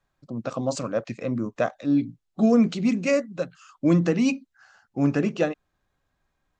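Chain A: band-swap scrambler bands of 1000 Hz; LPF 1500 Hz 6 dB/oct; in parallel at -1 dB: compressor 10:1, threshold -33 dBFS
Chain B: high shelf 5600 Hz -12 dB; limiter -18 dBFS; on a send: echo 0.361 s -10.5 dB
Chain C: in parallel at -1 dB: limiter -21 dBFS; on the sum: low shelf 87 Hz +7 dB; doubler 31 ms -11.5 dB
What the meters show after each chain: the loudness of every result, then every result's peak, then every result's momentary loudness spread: -24.0, -29.0, -21.0 LUFS; -10.0, -16.0, -5.5 dBFS; 12, 11, 12 LU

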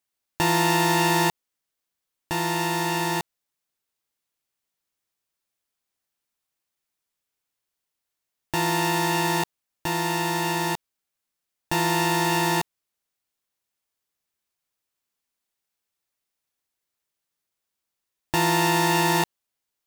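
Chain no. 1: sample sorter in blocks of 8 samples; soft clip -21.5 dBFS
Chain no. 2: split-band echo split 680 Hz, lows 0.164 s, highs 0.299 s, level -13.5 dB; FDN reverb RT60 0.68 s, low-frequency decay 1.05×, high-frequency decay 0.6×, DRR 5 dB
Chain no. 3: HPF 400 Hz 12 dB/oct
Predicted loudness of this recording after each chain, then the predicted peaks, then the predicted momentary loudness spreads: -26.5, -22.0, -24.5 LUFS; -21.5, -7.0, -7.5 dBFS; 8, 18, 10 LU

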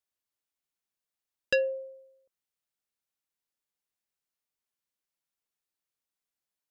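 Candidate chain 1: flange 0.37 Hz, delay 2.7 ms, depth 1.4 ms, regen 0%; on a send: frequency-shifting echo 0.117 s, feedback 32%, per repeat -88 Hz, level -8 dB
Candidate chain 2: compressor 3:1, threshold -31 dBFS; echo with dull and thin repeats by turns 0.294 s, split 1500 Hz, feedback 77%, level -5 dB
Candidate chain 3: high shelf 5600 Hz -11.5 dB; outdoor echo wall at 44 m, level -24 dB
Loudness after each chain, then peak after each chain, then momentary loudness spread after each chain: -31.0, -40.0, -31.0 LUFS; -18.0, -17.5, -18.0 dBFS; 17, 23, 9 LU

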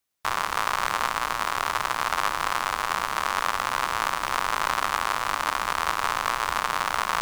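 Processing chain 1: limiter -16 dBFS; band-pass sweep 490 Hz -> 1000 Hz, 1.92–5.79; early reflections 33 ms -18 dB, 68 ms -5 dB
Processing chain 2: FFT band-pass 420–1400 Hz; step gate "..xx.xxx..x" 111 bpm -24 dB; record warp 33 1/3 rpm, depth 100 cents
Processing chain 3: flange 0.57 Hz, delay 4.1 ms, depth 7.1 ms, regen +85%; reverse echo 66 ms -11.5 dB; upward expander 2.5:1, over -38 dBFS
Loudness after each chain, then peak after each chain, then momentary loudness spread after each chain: -37.5, -30.5, -35.0 LUFS; -19.5, -12.0, -11.5 dBFS; 10, 5, 3 LU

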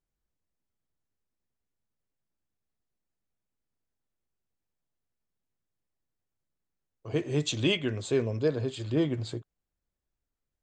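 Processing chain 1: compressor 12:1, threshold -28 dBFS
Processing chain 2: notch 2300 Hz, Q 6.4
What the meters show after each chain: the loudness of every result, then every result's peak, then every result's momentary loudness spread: -34.5, -30.0 LUFS; -19.5, -12.5 dBFS; 6, 9 LU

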